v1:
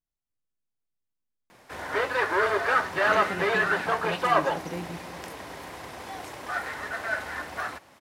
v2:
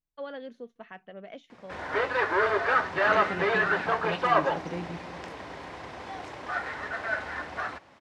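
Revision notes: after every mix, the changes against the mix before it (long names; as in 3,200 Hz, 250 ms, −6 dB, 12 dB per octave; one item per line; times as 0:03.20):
first voice: unmuted
master: add high-frequency loss of the air 110 metres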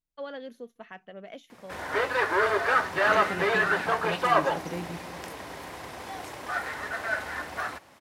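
master: remove high-frequency loss of the air 110 metres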